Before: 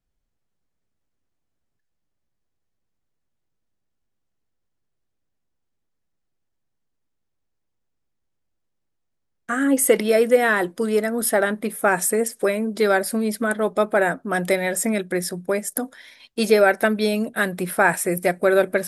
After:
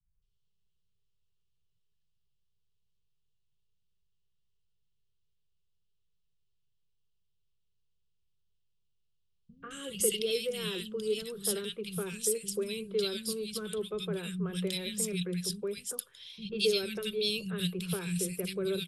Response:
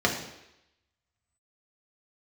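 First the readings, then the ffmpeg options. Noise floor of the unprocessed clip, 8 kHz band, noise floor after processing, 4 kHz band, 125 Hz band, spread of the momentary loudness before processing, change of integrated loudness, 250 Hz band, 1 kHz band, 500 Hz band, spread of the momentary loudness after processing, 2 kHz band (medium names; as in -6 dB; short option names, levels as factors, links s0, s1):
-75 dBFS, -8.0 dB, -75 dBFS, 0.0 dB, -5.5 dB, 8 LU, -12.5 dB, -13.5 dB, -26.5 dB, -14.0 dB, 8 LU, -20.5 dB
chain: -filter_complex "[0:a]firequalizer=gain_entry='entry(180,0);entry(260,-29);entry(410,-4);entry(670,-27);entry(1100,-10);entry(1900,-19);entry(2800,5);entry(6300,-6);entry(13000,-11)':delay=0.05:min_phase=1,acrossover=split=430|2400[s0][s1][s2];[s1]acompressor=threshold=0.00631:ratio=6[s3];[s0][s3][s2]amix=inputs=3:normalize=0,acrossover=split=210|1800[s4][s5][s6];[s5]adelay=140[s7];[s6]adelay=220[s8];[s4][s7][s8]amix=inputs=3:normalize=0"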